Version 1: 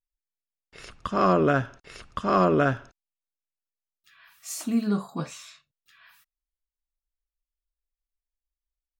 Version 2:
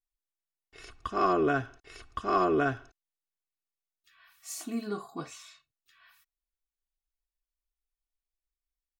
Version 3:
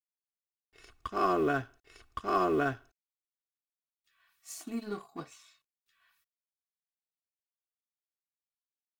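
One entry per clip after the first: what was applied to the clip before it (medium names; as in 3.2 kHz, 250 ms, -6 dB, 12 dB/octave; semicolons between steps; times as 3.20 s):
comb 2.7 ms, depth 67%; trim -6.5 dB
companding laws mixed up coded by A; trim -1.5 dB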